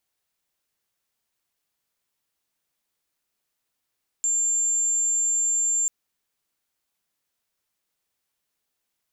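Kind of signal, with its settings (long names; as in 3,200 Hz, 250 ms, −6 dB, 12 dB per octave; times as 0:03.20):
tone sine 7,310 Hz −20 dBFS 1.64 s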